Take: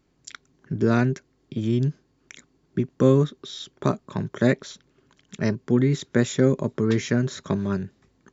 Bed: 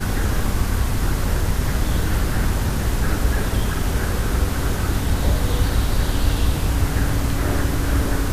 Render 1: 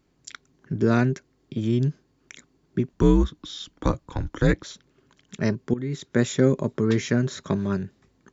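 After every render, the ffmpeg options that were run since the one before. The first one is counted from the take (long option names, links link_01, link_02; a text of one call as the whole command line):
ffmpeg -i in.wav -filter_complex "[0:a]asettb=1/sr,asplit=3[link_01][link_02][link_03];[link_01]atrim=end=2.924[link_04];[link_02]atrim=start=2.92:end=4.64,asetpts=PTS-STARTPTS,afade=type=in:duration=0.004:curve=qsin,afade=type=out:start_time=1.716:duration=0.004:curve=qsin,afreqshift=-88[link_05];[link_03]atrim=start=4.636[link_06];[link_04][link_05]acrossfade=duration=0.004:curve1=hsin:curve2=qsin[link_07];[link_07][link_06]acrossfade=duration=0.004:curve1=qsin:curve2=hsin,asplit=2[link_08][link_09];[link_08]atrim=end=5.74,asetpts=PTS-STARTPTS,afade=type=out:start_time=5.736:duration=0.004:curve=hsin:silence=0.149624[link_10];[link_09]atrim=start=5.74,asetpts=PTS-STARTPTS,afade=type=in:duration=0.5:silence=0.149624[link_11];[link_10][link_11]concat=n=2:v=0:a=1" out.wav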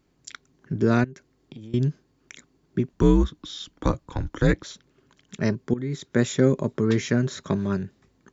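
ffmpeg -i in.wav -filter_complex "[0:a]asettb=1/sr,asplit=3[link_01][link_02][link_03];[link_01]atrim=end=1.044[link_04];[link_02]atrim=start=1.04:end=1.74,asetpts=PTS-STARTPTS,afade=type=in:duration=0.004:curve=qsin,afade=type=out:start_time=0.696:duration=0.004:curve=qsin,acompressor=threshold=-36dB:ratio=20:attack=3.2:release=140:knee=1:detection=peak[link_05];[link_03]atrim=start=1.736[link_06];[link_04][link_05]acrossfade=duration=0.004:curve1=hsin:curve2=qsin[link_07];[link_07][link_06]acrossfade=duration=0.004:curve1=qsin:curve2=hsin,asettb=1/sr,asplit=3[link_08][link_09][link_10];[link_08]atrim=end=5.634[link_11];[link_09]atrim=start=5.63:end=6.05,asetpts=PTS-STARTPTS,afade=type=in:duration=0.004:curve=qsin,afade=type=out:start_time=0.416:duration=0.004:curve=qsin,bandreject=frequency=2800:width=12[link_12];[link_10]atrim=start=6.046[link_13];[link_11][link_12]acrossfade=duration=0.004:curve1=hsin:curve2=qsin[link_14];[link_14][link_13]acrossfade=duration=0.004:curve1=qsin:curve2=hsin" out.wav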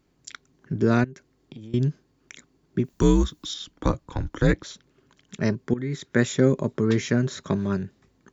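ffmpeg -i in.wav -filter_complex "[0:a]asettb=1/sr,asplit=3[link_01][link_02][link_03];[link_01]atrim=end=2.844[link_04];[link_02]atrim=start=2.84:end=3.54,asetpts=PTS-STARTPTS,afade=type=in:duration=0.004:curve=qsin,afade=type=out:start_time=0.696:duration=0.004:curve=qsin,aemphasis=mode=production:type=75fm[link_05];[link_03]atrim=start=3.536[link_06];[link_04][link_05]acrossfade=duration=0.004:curve1=hsin:curve2=qsin[link_07];[link_07][link_06]acrossfade=duration=0.004:curve1=qsin:curve2=hsin,asettb=1/sr,asplit=3[link_08][link_09][link_10];[link_08]atrim=end=5.674[link_11];[link_09]atrim=start=5.67:end=6.25,asetpts=PTS-STARTPTS,afade=type=in:duration=0.004:curve=qsin,afade=type=out:start_time=0.576:duration=0.004:curve=qsin,equalizer=frequency=1800:width_type=o:width=0.85:gain=5[link_12];[link_10]atrim=start=6.246[link_13];[link_11][link_12]acrossfade=duration=0.004:curve1=hsin:curve2=qsin[link_14];[link_14][link_13]acrossfade=duration=0.004:curve1=qsin:curve2=hsin" out.wav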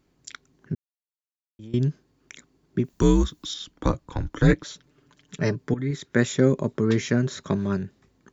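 ffmpeg -i in.wav -filter_complex "[0:a]asettb=1/sr,asplit=3[link_01][link_02][link_03];[link_01]atrim=end=4.364[link_04];[link_02]atrim=start=4.36:end=5.91,asetpts=PTS-STARTPTS,afade=type=in:duration=0.004:curve=qsin,afade=type=out:start_time=1.546:duration=0.004:curve=qsin,aecho=1:1:6.8:0.54,atrim=end_sample=68355[link_05];[link_03]atrim=start=5.906[link_06];[link_04][link_05]acrossfade=duration=0.004:curve1=hsin:curve2=qsin[link_07];[link_07][link_06]acrossfade=duration=0.004:curve1=qsin:curve2=hsin,asplit=3[link_08][link_09][link_10];[link_08]atrim=end=0.75,asetpts=PTS-STARTPTS,afade=type=out:start_time=0.746:duration=0.004:curve=hsin[link_11];[link_09]atrim=start=0.75:end=1.59,asetpts=PTS-STARTPTS,volume=0[link_12];[link_10]atrim=start=1.59,asetpts=PTS-STARTPTS,afade=type=in:duration=0.004:curve=hsin[link_13];[link_11][link_12][link_13]concat=n=3:v=0:a=1" out.wav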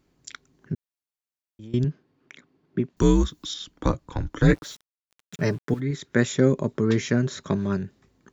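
ffmpeg -i in.wav -filter_complex "[0:a]asettb=1/sr,asplit=3[link_01][link_02][link_03];[link_01]atrim=end=1.844[link_04];[link_02]atrim=start=1.84:end=2.97,asetpts=PTS-STARTPTS,afade=type=in:duration=0.004:curve=qsin,afade=type=out:start_time=1.126:duration=0.004:curve=qsin,highpass=120,lowpass=3300[link_05];[link_03]atrim=start=2.966[link_06];[link_04][link_05]acrossfade=duration=0.004:curve1=hsin:curve2=qsin[link_07];[link_07][link_06]acrossfade=duration=0.004:curve1=qsin:curve2=hsin,asplit=3[link_08][link_09][link_10];[link_08]afade=type=out:start_time=4.41:duration=0.02[link_11];[link_09]aeval=exprs='val(0)*gte(abs(val(0)),0.00562)':channel_layout=same,afade=type=in:start_time=4.41:duration=0.02,afade=type=out:start_time=5.79:duration=0.02[link_12];[link_10]afade=type=in:start_time=5.79:duration=0.02[link_13];[link_11][link_12][link_13]amix=inputs=3:normalize=0" out.wav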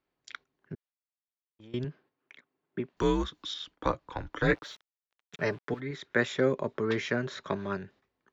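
ffmpeg -i in.wav -filter_complex "[0:a]agate=range=-10dB:threshold=-48dB:ratio=16:detection=peak,acrossover=split=440 4300:gain=0.224 1 0.1[link_01][link_02][link_03];[link_01][link_02][link_03]amix=inputs=3:normalize=0" out.wav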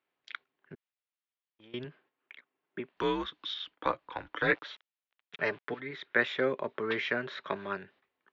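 ffmpeg -i in.wav -af "lowpass=frequency=3200:width=0.5412,lowpass=frequency=3200:width=1.3066,aemphasis=mode=production:type=riaa" out.wav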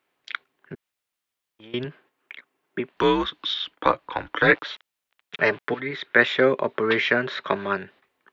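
ffmpeg -i in.wav -af "volume=10.5dB,alimiter=limit=-3dB:level=0:latency=1" out.wav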